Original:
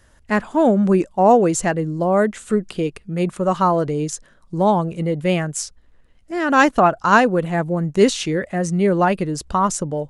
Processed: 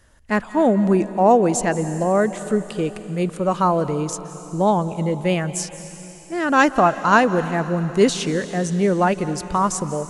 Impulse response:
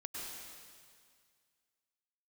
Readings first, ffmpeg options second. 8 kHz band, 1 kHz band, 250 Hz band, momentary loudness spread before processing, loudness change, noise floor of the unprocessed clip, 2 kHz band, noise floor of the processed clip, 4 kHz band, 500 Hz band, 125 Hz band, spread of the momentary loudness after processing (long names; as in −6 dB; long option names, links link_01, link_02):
−0.5 dB, −1.0 dB, −1.0 dB, 10 LU, −1.0 dB, −53 dBFS, −1.0 dB, −40 dBFS, −1.0 dB, −1.0 dB, −1.0 dB, 10 LU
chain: -filter_complex "[0:a]asplit=2[link_01][link_02];[1:a]atrim=start_sample=2205,asetrate=26901,aresample=44100,highshelf=frequency=6300:gain=8[link_03];[link_02][link_03]afir=irnorm=-1:irlink=0,volume=-14dB[link_04];[link_01][link_04]amix=inputs=2:normalize=0,volume=-2.5dB"